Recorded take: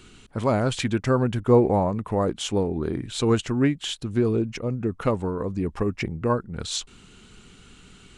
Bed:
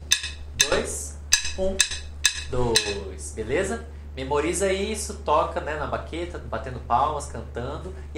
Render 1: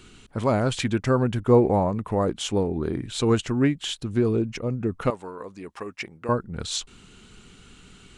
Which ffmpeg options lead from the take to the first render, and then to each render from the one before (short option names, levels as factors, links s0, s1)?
-filter_complex "[0:a]asettb=1/sr,asplit=3[s0][s1][s2];[s0]atrim=end=5.104[s3];[s1]atrim=start=5.1:end=6.29,asetpts=PTS-STARTPTS,afade=t=in:d=0.004:c=qsin,afade=t=out:st=1.186:d=0.004:c=qsin,highpass=f=1100:p=1[s4];[s2]atrim=start=6.286[s5];[s3][s4]acrossfade=d=0.004:c1=hsin:c2=qsin[s6];[s6][s5]acrossfade=d=0.004:c1=qsin:c2=hsin"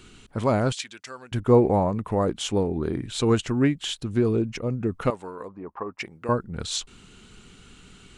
-filter_complex "[0:a]asettb=1/sr,asplit=3[s0][s1][s2];[s0]atrim=end=0.724[s3];[s1]atrim=start=0.72:end=1.32,asetpts=PTS-STARTPTS,afade=t=in:d=0.004:c=qsin,afade=t=out:st=0.596:d=0.004:c=qsin,bandpass=f=5600:t=q:w=0.85[s4];[s2]atrim=start=1.316[s5];[s3][s4]acrossfade=d=0.004:c1=hsin:c2=qsin[s6];[s6][s5]acrossfade=d=0.004:c1=qsin:c2=hsin,asplit=3[s7][s8][s9];[s7]afade=t=out:st=5.47:d=0.02[s10];[s8]lowpass=f=1000:t=q:w=2.2,afade=t=in:st=5.47:d=0.02,afade=t=out:st=5.98:d=0.02[s11];[s9]afade=t=in:st=5.98:d=0.02[s12];[s10][s11][s12]amix=inputs=3:normalize=0"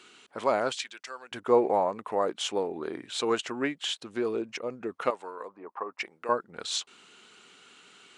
-af "highpass=500,highshelf=f=9400:g=-11"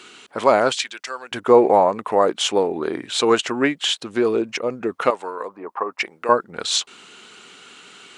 -af "volume=3.35,alimiter=limit=0.794:level=0:latency=1"